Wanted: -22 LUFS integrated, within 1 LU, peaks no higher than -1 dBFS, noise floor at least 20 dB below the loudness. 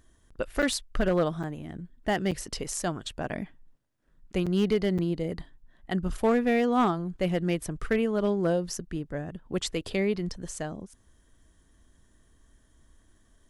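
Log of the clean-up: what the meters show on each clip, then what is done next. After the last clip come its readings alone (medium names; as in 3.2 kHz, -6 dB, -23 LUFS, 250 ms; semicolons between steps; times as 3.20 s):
clipped samples 0.3%; clipping level -17.0 dBFS; dropouts 5; longest dropout 6.4 ms; loudness -29.0 LUFS; peak level -17.0 dBFS; loudness target -22.0 LUFS
-> clip repair -17 dBFS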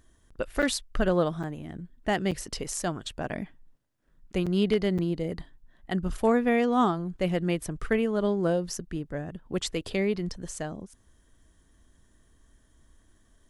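clipped samples 0.0%; dropouts 5; longest dropout 6.4 ms
-> interpolate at 0.62/1.43/2.31/4.46/4.98 s, 6.4 ms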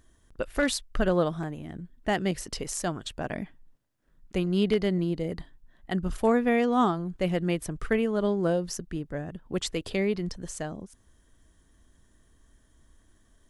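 dropouts 0; loudness -28.5 LUFS; peak level -11.0 dBFS; loudness target -22.0 LUFS
-> trim +6.5 dB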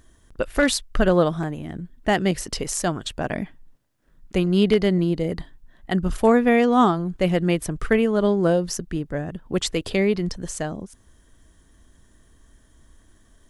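loudness -22.5 LUFS; peak level -4.5 dBFS; noise floor -57 dBFS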